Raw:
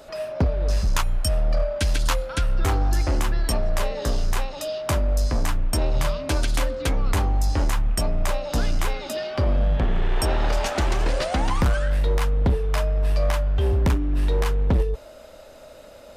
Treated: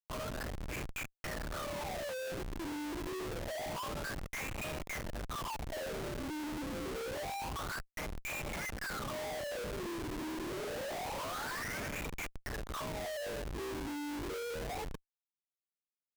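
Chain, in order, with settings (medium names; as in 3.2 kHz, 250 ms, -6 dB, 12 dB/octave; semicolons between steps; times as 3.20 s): wah-wah 0.27 Hz 300–2400 Hz, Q 17; vibrato 0.42 Hz 22 cents; Schmitt trigger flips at -54 dBFS; trim +5 dB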